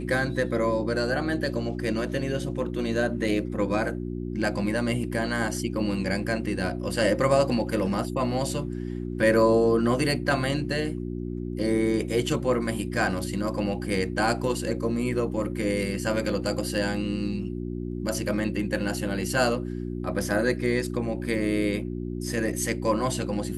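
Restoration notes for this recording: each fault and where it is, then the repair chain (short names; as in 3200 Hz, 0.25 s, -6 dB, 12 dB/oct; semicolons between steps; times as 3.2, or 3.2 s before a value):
hum 60 Hz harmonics 6 -32 dBFS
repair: de-hum 60 Hz, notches 6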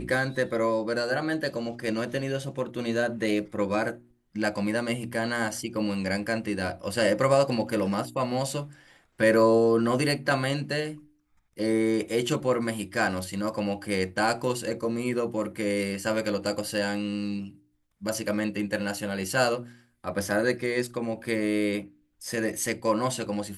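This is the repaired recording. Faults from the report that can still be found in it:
none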